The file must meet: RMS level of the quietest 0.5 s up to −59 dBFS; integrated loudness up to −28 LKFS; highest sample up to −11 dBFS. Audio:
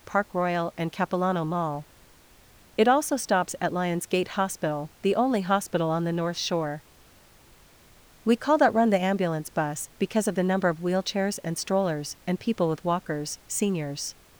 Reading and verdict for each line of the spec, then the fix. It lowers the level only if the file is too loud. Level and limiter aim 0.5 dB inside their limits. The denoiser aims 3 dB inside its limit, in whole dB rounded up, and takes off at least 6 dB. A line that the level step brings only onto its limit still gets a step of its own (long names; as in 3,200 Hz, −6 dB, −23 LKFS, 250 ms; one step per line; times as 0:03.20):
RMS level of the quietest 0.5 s −55 dBFS: out of spec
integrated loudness −26.5 LKFS: out of spec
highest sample −8.5 dBFS: out of spec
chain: broadband denoise 6 dB, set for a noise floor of −55 dBFS
level −2 dB
brickwall limiter −11.5 dBFS